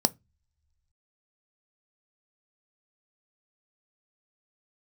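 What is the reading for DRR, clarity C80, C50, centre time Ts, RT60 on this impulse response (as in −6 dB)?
14.5 dB, 36.5 dB, 27.5 dB, 3 ms, non-exponential decay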